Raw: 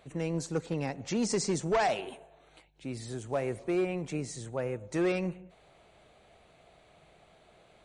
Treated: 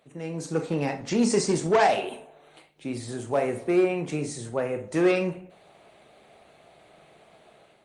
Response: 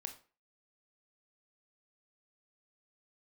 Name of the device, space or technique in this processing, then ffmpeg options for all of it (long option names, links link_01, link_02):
far-field microphone of a smart speaker: -filter_complex "[1:a]atrim=start_sample=2205[link_01];[0:a][link_01]afir=irnorm=-1:irlink=0,highpass=140,dynaudnorm=framelen=170:gausssize=5:maxgain=9.5dB,volume=1dB" -ar 48000 -c:a libopus -b:a 32k